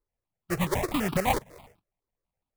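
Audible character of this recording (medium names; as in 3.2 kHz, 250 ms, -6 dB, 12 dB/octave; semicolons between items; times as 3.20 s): aliases and images of a low sample rate 1.5 kHz, jitter 20%; notches that jump at a steady rate 12 Hz 710–1900 Hz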